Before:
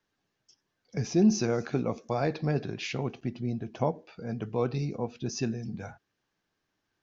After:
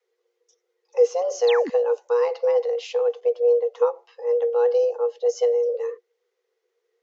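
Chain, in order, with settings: resonant low shelf 170 Hz +13 dB, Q 3; frequency shift +360 Hz; painted sound fall, 1.47–1.7, 210–4800 Hz -27 dBFS; gain -2 dB

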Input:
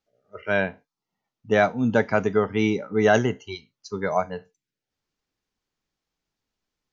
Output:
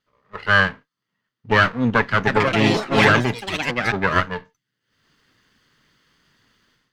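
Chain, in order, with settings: minimum comb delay 0.63 ms; graphic EQ 125/250/500/1000/2000/4000 Hz +10/+6/+6/+9/+12/+9 dB; AGC gain up to 16.5 dB; 2.14–4.22 echoes that change speed 0.13 s, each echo +4 st, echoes 3; gain -2.5 dB

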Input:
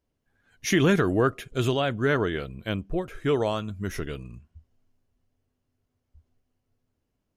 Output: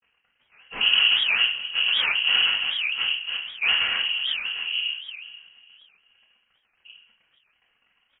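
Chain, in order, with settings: gate with hold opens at -58 dBFS; tilt -4 dB/oct; compressor 3:1, threshold -31 dBFS, peak gain reduction 18.5 dB; flange 0.58 Hz, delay 6 ms, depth 2 ms, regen +81%; wide varispeed 0.898×; crackle 88/s -47 dBFS; noise vocoder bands 3; feedback echo 0.482 s, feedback 33%, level -17.5 dB; reverb RT60 0.60 s, pre-delay 3 ms, DRR -3 dB; inverted band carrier 3100 Hz; record warp 78 rpm, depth 250 cents; gain +6.5 dB

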